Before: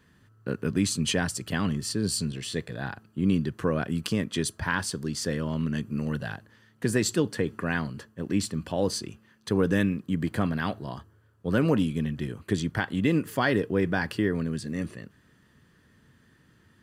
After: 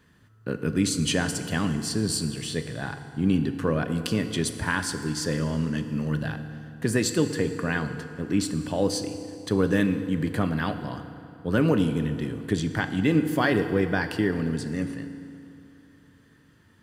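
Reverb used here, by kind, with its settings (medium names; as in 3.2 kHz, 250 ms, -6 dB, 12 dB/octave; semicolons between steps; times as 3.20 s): FDN reverb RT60 2.8 s, high-frequency decay 0.7×, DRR 8 dB; trim +1 dB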